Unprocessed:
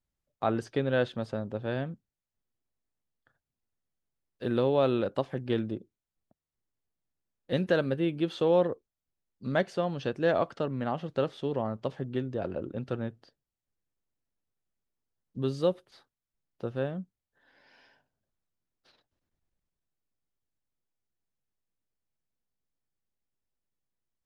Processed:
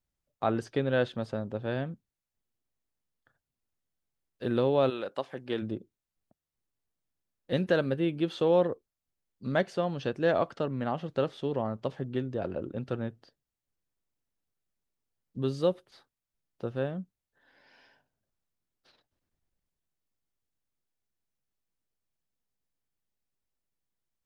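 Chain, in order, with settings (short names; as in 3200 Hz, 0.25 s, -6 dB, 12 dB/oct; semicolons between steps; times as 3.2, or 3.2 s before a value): 4.89–5.61 HPF 980 Hz -> 360 Hz 6 dB/oct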